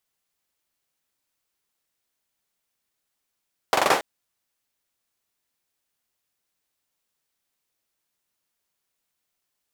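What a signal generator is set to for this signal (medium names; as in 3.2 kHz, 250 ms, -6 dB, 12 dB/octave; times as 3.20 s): hand clap length 0.28 s, bursts 5, apart 43 ms, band 700 Hz, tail 0.37 s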